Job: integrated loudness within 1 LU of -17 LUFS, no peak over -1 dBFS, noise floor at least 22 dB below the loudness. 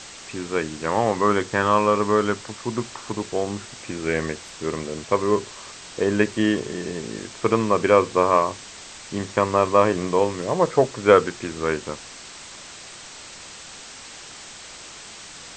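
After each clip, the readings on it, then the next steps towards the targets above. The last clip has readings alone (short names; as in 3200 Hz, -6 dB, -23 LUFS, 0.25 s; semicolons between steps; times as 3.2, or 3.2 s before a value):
noise floor -41 dBFS; noise floor target -45 dBFS; loudness -22.5 LUFS; peak -2.0 dBFS; loudness target -17.0 LUFS
-> noise print and reduce 6 dB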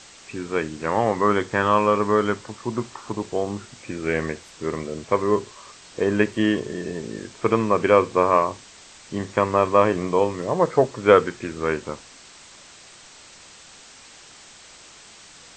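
noise floor -47 dBFS; loudness -22.5 LUFS; peak -2.0 dBFS; loudness target -17.0 LUFS
-> gain +5.5 dB; limiter -1 dBFS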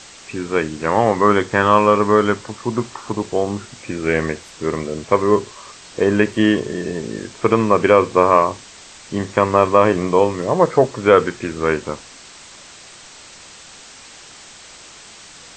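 loudness -17.5 LUFS; peak -1.0 dBFS; noise floor -42 dBFS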